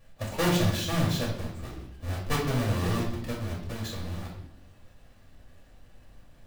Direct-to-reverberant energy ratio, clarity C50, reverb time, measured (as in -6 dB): -4.5 dB, 4.0 dB, 0.75 s